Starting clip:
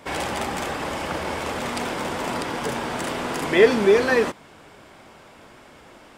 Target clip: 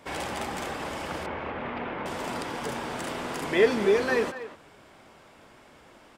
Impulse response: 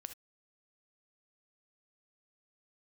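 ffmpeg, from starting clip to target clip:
-filter_complex "[0:a]asettb=1/sr,asplit=3[link_01][link_02][link_03];[link_01]atrim=end=1.264[link_04];[link_02]atrim=start=1.26:end=2.06,asetpts=PTS-STARTPTS,afade=type=in:duration=0.004:curve=qsin,afade=type=out:start_time=0.796:duration=0.004:curve=qsin,lowpass=frequency=2700:width=0.5412,lowpass=frequency=2700:width=1.3066[link_05];[link_03]atrim=start=2.056[link_06];[link_04][link_05]acrossfade=duration=0.004:curve1=hsin:curve2=qsin[link_07];[link_07][link_06]acrossfade=duration=0.004:curve1=qsin:curve2=hsin,asplit=2[link_08][link_09];[link_09]adelay=240,highpass=300,lowpass=3400,asoftclip=type=hard:threshold=-13dB,volume=-12dB[link_10];[link_08][link_10]amix=inputs=2:normalize=0,volume=-6dB"

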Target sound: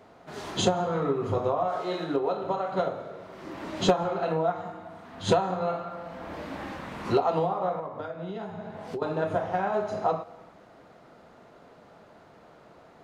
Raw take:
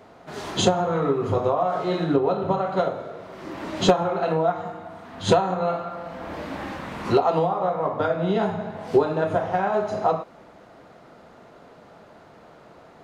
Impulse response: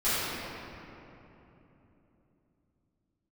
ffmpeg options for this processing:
-filter_complex "[0:a]asettb=1/sr,asplit=3[link_01][link_02][link_03];[link_01]atrim=end=1.684[link_04];[link_02]atrim=start=1.68:end=2.72,asetpts=PTS-STARTPTS,afade=type=in:duration=0.004:curve=qsin,afade=type=out:start_time=1.036:duration=0.004:curve=qsin,bass=frequency=250:gain=-10,treble=frequency=4000:gain=3[link_05];[link_03]atrim=start=2.716[link_06];[link_04][link_05]acrossfade=duration=0.004:curve1=hsin:curve2=qsin[link_07];[link_07][link_06]acrossfade=duration=0.004:curve1=qsin:curve2=hsin,asettb=1/sr,asplit=3[link_08][link_09][link_10];[link_08]atrim=end=7.794[link_11];[link_09]atrim=start=7.79:end=9.02,asetpts=PTS-STARTPTS,afade=type=in:duration=0.004:curve=qsin,afade=type=out:start_time=1.226:duration=0.004:curve=qsin,acompressor=threshold=-29dB:ratio=5[link_12];[link_10]atrim=start=9.016[link_13];[link_11][link_12]acrossfade=duration=0.004:curve1=hsin:curve2=qsin[link_14];[link_14][link_13]acrossfade=duration=0.004:curve1=qsin:curve2=hsin,asplit=2[link_15][link_16];[1:a]atrim=start_sample=2205,afade=type=out:start_time=0.32:duration=0.01,atrim=end_sample=14553,adelay=142[link_17];[link_16][link_17]afir=irnorm=-1:irlink=0,volume=-35dB[link_18];[link_15][link_18]amix=inputs=2:normalize=0,volume=-4.5dB"

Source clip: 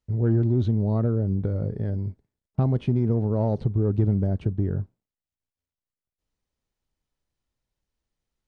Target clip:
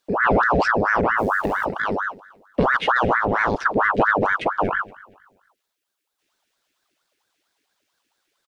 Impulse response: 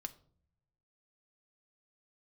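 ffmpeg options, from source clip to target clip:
-filter_complex "[0:a]highshelf=frequency=1500:width_type=q:width=3:gain=11.5,asplit=3[link_01][link_02][link_03];[link_01]afade=type=out:start_time=1.17:duration=0.02[link_04];[link_02]acrusher=bits=9:dc=4:mix=0:aa=0.000001,afade=type=in:start_time=1.17:duration=0.02,afade=type=out:start_time=1.64:duration=0.02[link_05];[link_03]afade=type=in:start_time=1.64:duration=0.02[link_06];[link_04][link_05][link_06]amix=inputs=3:normalize=0,aecho=1:1:235|470|705:0.0891|0.0303|0.0103,aeval=exprs='val(0)*sin(2*PI*960*n/s+960*0.7/4.4*sin(2*PI*4.4*n/s))':channel_layout=same,volume=6dB"

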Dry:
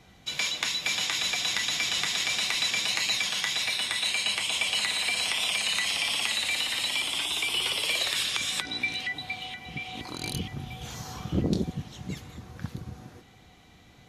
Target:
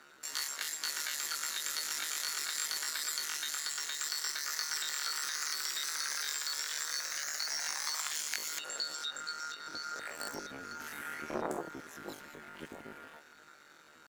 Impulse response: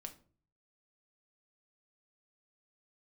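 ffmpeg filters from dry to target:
-filter_complex "[0:a]highpass=160,equalizer=frequency=860:width=1.1:gain=13,asplit=2[link_01][link_02];[link_02]acompressor=threshold=-34dB:ratio=6,volume=-2.5dB[link_03];[link_01][link_03]amix=inputs=2:normalize=0,tremolo=f=79:d=0.75,asetrate=83250,aresample=44100,atempo=0.529732,volume=-8.5dB"

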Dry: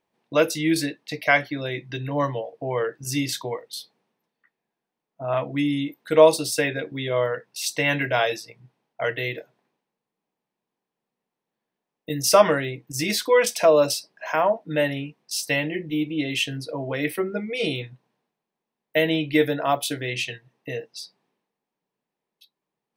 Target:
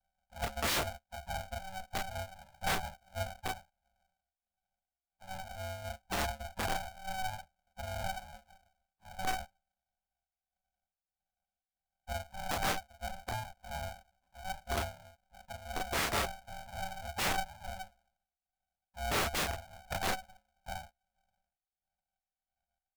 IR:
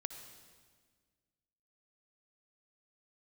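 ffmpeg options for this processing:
-filter_complex "[0:a]tremolo=f=1.5:d=0.77,aeval=exprs='0.668*(cos(1*acos(clip(val(0)/0.668,-1,1)))-cos(1*PI/2))+0.0106*(cos(3*acos(clip(val(0)/0.668,-1,1)))-cos(3*PI/2))+0.188*(cos(4*acos(clip(val(0)/0.668,-1,1)))-cos(4*PI/2))+0.00668*(cos(5*acos(clip(val(0)/0.668,-1,1)))-cos(5*PI/2))':channel_layout=same,asuperpass=centerf=360:order=8:qfactor=3.1,asplit=4[link_01][link_02][link_03][link_04];[link_02]asetrate=22050,aresample=44100,atempo=2,volume=-12dB[link_05];[link_03]asetrate=52444,aresample=44100,atempo=0.840896,volume=-15dB[link_06];[link_04]asetrate=55563,aresample=44100,atempo=0.793701,volume=-16dB[link_07];[link_01][link_05][link_06][link_07]amix=inputs=4:normalize=0,aeval=exprs='(mod(28.2*val(0)+1,2)-1)/28.2':channel_layout=same,aecho=1:1:25|35|48:0.562|0.596|0.211,aeval=exprs='val(0)*sgn(sin(2*PI*380*n/s))':channel_layout=same"

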